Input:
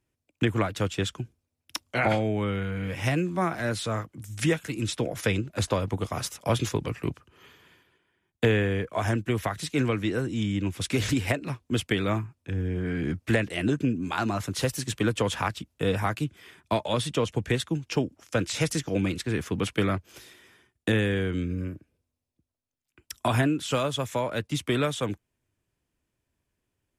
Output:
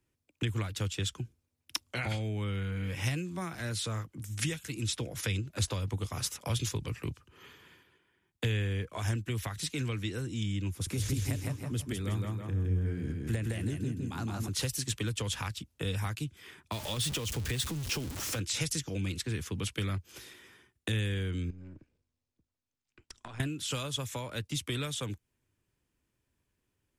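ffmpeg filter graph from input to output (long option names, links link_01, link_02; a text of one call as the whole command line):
ffmpeg -i in.wav -filter_complex "[0:a]asettb=1/sr,asplit=3[link_01][link_02][link_03];[link_01]atrim=end=10.704[link_04];[link_02]atrim=start=10.7:end=14.48,asetpts=PTS-STARTPTS,afade=type=in:duration=0.004:curve=qsin,afade=type=out:start_time=3.776:duration=0.004:curve=qsin,equalizer=frequency=3100:width_type=o:width=2:gain=-10,bandreject=frequency=7800:width=18,aecho=1:1:163|326|489|652|815:0.668|0.254|0.0965|0.0367|0.0139,atrim=end_sample=166698[link_05];[link_03]atrim=start=14.476[link_06];[link_04][link_05]acrossfade=duration=0.004:curve1=hsin:curve2=qsin[link_07];[link_07][link_06]acrossfade=duration=0.004:curve1=qsin:curve2=hsin,asettb=1/sr,asplit=3[link_08][link_09][link_10];[link_08]atrim=end=16.724[link_11];[link_09]atrim=start=16.72:end=18.39,asetpts=PTS-STARTPTS,afade=type=in:duration=0.004:curve=qsin,afade=type=out:start_time=1.666:duration=0.004:curve=qsin,aeval=exprs='val(0)+0.5*0.0316*sgn(val(0))':channel_layout=same,acompressor=threshold=-25dB:ratio=2:attack=3.2:release=140:knee=1:detection=peak[link_12];[link_10]atrim=start=18.386[link_13];[link_11][link_12]acrossfade=duration=0.004:curve1=hsin:curve2=qsin[link_14];[link_14][link_13]acrossfade=duration=0.004:curve1=qsin:curve2=hsin,asettb=1/sr,asplit=3[link_15][link_16][link_17];[link_15]atrim=end=21.504[link_18];[link_16]atrim=start=21.5:end=23.4,asetpts=PTS-STARTPTS,afade=type=in:duration=0.004:curve=qsin,afade=type=out:start_time=1.896:duration=0.004:curve=qsin,aeval=exprs='if(lt(val(0),0),0.447*val(0),val(0))':channel_layout=same,lowpass=frequency=7800:width=0.5412,lowpass=frequency=7800:width=1.3066,acompressor=threshold=-42dB:ratio=6:attack=3.2:release=140:knee=1:detection=peak[link_19];[link_17]atrim=start=23.396[link_20];[link_18][link_19]acrossfade=duration=0.004:curve1=hsin:curve2=qsin[link_21];[link_21][link_20]acrossfade=duration=0.004:curve1=qsin:curve2=hsin,equalizer=frequency=660:width=3.8:gain=-5,acrossover=split=120|3000[link_22][link_23][link_24];[link_23]acompressor=threshold=-39dB:ratio=4[link_25];[link_22][link_25][link_24]amix=inputs=3:normalize=0" out.wav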